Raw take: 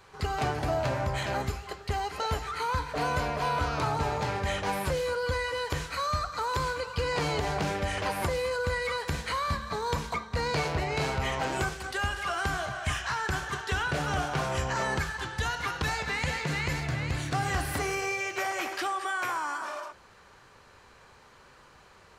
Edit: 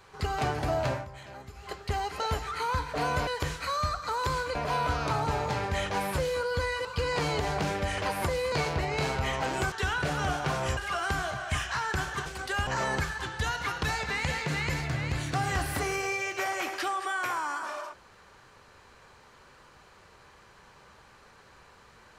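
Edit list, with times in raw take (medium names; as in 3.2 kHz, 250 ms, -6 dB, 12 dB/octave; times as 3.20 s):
0.91–1.69 s: dip -14.5 dB, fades 0.15 s
5.57–6.85 s: move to 3.27 s
8.52–10.51 s: delete
11.71–12.12 s: swap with 13.61–14.66 s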